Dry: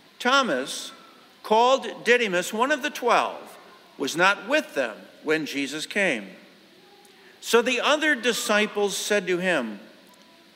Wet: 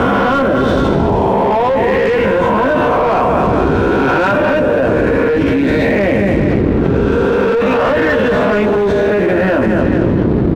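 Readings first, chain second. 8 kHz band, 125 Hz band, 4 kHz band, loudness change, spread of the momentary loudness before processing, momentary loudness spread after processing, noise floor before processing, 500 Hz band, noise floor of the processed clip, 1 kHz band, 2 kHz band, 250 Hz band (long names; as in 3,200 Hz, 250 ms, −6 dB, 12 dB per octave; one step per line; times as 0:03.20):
can't be measured, +24.5 dB, −1.0 dB, +10.5 dB, 12 LU, 1 LU, −54 dBFS, +13.5 dB, −13 dBFS, +10.0 dB, +6.5 dB, +17.0 dB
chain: peak hold with a rise ahead of every peak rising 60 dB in 1.43 s
head-to-tape spacing loss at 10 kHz 35 dB
double-tracking delay 15 ms −3 dB
repeating echo 225 ms, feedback 39%, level −10.5 dB
noise in a band 42–400 Hz −34 dBFS
leveller curve on the samples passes 3
high-shelf EQ 2,000 Hz −11.5 dB
envelope flattener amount 100%
level −4.5 dB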